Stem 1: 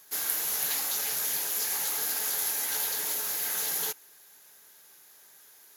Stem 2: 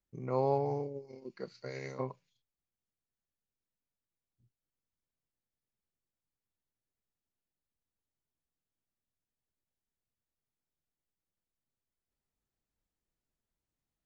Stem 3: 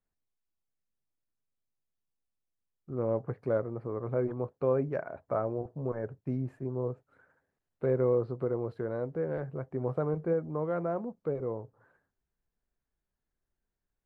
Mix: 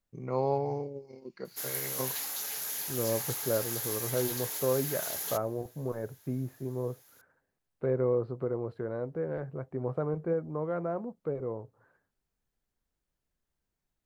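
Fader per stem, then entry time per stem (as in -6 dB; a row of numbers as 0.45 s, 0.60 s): -6.0 dB, +1.0 dB, -1.0 dB; 1.45 s, 0.00 s, 0.00 s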